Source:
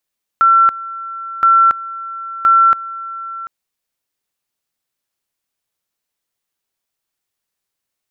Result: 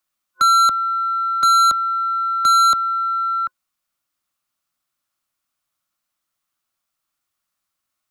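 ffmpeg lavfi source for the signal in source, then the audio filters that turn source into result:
-f lavfi -i "aevalsrc='pow(10,(-6.5-17.5*gte(mod(t,1.02),0.28))/20)*sin(2*PI*1350*t)':d=3.06:s=44100"
-filter_complex "[0:a]superequalizer=7b=0.282:10b=2.24,acrossover=split=150|440|490[s0][s1][s2][s3];[s3]asoftclip=type=tanh:threshold=0.224[s4];[s0][s1][s2][s4]amix=inputs=4:normalize=0"

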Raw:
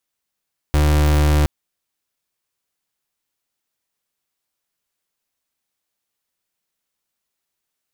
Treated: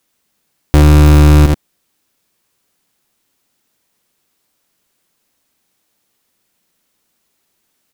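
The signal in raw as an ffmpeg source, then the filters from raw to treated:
-f lavfi -i "aevalsrc='0.188*(2*lt(mod(74.8*t,1),0.35)-1)':d=0.72:s=44100"
-filter_complex "[0:a]equalizer=f=240:w=0.71:g=6.5,asplit=2[s0][s1];[s1]aecho=0:1:81:0.299[s2];[s0][s2]amix=inputs=2:normalize=0,alimiter=level_in=4.47:limit=0.891:release=50:level=0:latency=1"

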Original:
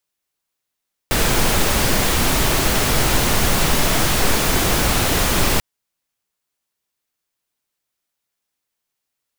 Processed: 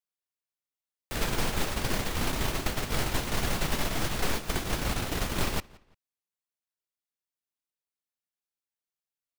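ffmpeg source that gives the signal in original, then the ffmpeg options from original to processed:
-f lavfi -i "anoisesrc=c=pink:a=0.767:d=4.49:r=44100:seed=1"
-filter_complex "[0:a]agate=range=0.141:threshold=0.178:ratio=16:detection=peak,acrossover=split=380|2500|5100[s0][s1][s2][s3];[s0]acompressor=threshold=0.0447:ratio=4[s4];[s1]acompressor=threshold=0.0178:ratio=4[s5];[s2]acompressor=threshold=0.00891:ratio=4[s6];[s3]acompressor=threshold=0.00891:ratio=4[s7];[s4][s5][s6][s7]amix=inputs=4:normalize=0,asplit=2[s8][s9];[s9]adelay=172,lowpass=f=4700:p=1,volume=0.0708,asplit=2[s10][s11];[s11]adelay=172,lowpass=f=4700:p=1,volume=0.31[s12];[s8][s10][s12]amix=inputs=3:normalize=0"

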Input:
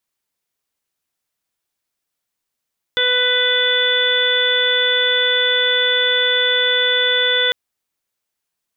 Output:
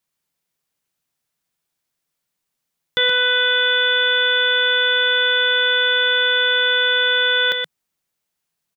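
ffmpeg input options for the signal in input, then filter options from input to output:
-f lavfi -i "aevalsrc='0.0841*sin(2*PI*497*t)+0.0211*sin(2*PI*994*t)+0.0944*sin(2*PI*1491*t)+0.075*sin(2*PI*1988*t)+0.02*sin(2*PI*2485*t)+0.0355*sin(2*PI*2982*t)+0.158*sin(2*PI*3479*t)':d=4.55:s=44100"
-filter_complex "[0:a]equalizer=f=160:w=2.9:g=8.5,asplit=2[s0][s1];[s1]aecho=0:1:124:0.473[s2];[s0][s2]amix=inputs=2:normalize=0"

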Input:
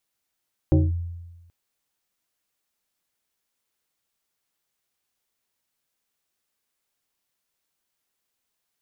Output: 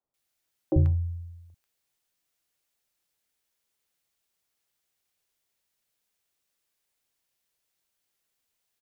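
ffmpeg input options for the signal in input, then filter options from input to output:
-f lavfi -i "aevalsrc='0.251*pow(10,-3*t/1.18)*sin(2*PI*85.7*t+1.4*clip(1-t/0.2,0,1)*sin(2*PI*2.66*85.7*t))':d=0.78:s=44100"
-filter_complex "[0:a]acrossover=split=240|1100[s0][s1][s2];[s0]adelay=40[s3];[s2]adelay=140[s4];[s3][s1][s4]amix=inputs=3:normalize=0"

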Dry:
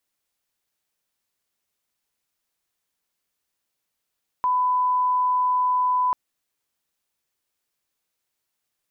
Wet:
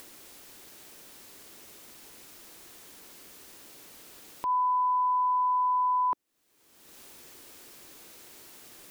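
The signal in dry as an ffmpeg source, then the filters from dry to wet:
-f lavfi -i "sine=f=1000:d=1.69:r=44100,volume=0.06dB"
-af "equalizer=f=330:t=o:w=1.3:g=9.5,acompressor=mode=upward:threshold=0.0447:ratio=2.5,alimiter=limit=0.075:level=0:latency=1:release=217"

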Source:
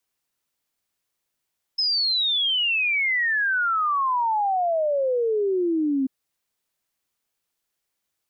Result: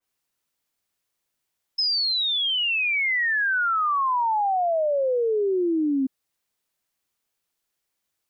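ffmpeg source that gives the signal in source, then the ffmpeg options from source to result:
-f lavfi -i "aevalsrc='0.106*clip(min(t,4.29-t)/0.01,0,1)*sin(2*PI*5200*4.29/log(260/5200)*(exp(log(260/5200)*t/4.29)-1))':d=4.29:s=44100"
-af "adynamicequalizer=threshold=0.0224:dfrequency=2900:dqfactor=0.7:tfrequency=2900:tqfactor=0.7:attack=5:release=100:ratio=0.375:range=1.5:mode=cutabove:tftype=highshelf"

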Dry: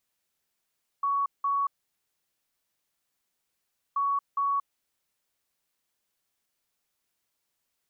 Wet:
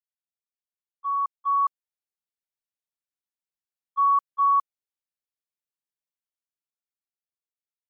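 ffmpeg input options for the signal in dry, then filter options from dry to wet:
-f lavfi -i "aevalsrc='0.0668*sin(2*PI*1120*t)*clip(min(mod(mod(t,2.93),0.41),0.23-mod(mod(t,2.93),0.41))/0.005,0,1)*lt(mod(t,2.93),0.82)':d=5.86:s=44100"
-af "agate=range=0.0316:threshold=0.0447:ratio=16:detection=peak,dynaudnorm=f=210:g=13:m=3.55"

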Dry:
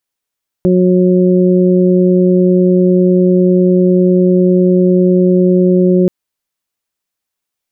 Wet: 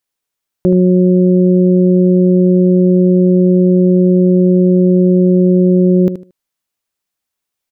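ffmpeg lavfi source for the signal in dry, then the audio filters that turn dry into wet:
-f lavfi -i "aevalsrc='0.355*sin(2*PI*182*t)+0.316*sin(2*PI*364*t)+0.133*sin(2*PI*546*t)':d=5.43:s=44100"
-af "aecho=1:1:76|152|228:0.282|0.062|0.0136"

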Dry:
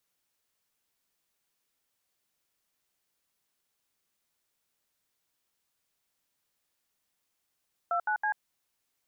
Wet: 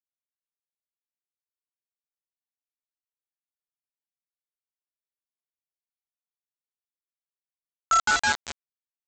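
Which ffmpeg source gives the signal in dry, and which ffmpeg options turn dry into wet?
-f lavfi -i "aevalsrc='0.0376*clip(min(mod(t,0.162),0.089-mod(t,0.162))/0.002,0,1)*(eq(floor(t/0.162),0)*(sin(2*PI*697*mod(t,0.162))+sin(2*PI*1336*mod(t,0.162)))+eq(floor(t/0.162),1)*(sin(2*PI*852*mod(t,0.162))+sin(2*PI*1477*mod(t,0.162)))+eq(floor(t/0.162),2)*(sin(2*PI*852*mod(t,0.162))+sin(2*PI*1633*mod(t,0.162))))':d=0.486:s=44100"
-af "highpass=f=1200:t=q:w=6,aecho=1:1:196|392|588|784|980:0.447|0.188|0.0788|0.0331|0.0139,aresample=16000,acrusher=bits=3:mix=0:aa=0.000001,aresample=44100"

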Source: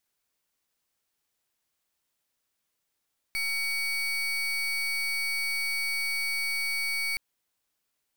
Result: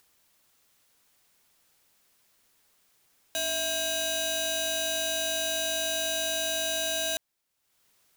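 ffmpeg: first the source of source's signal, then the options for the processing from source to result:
-f lavfi -i "aevalsrc='0.0335*(2*lt(mod(2250*t,1),0.33)-1)':d=3.82:s=44100"
-af "acompressor=mode=upward:threshold=0.002:ratio=2.5,aeval=exprs='val(0)*sgn(sin(2*PI*1600*n/s))':c=same"

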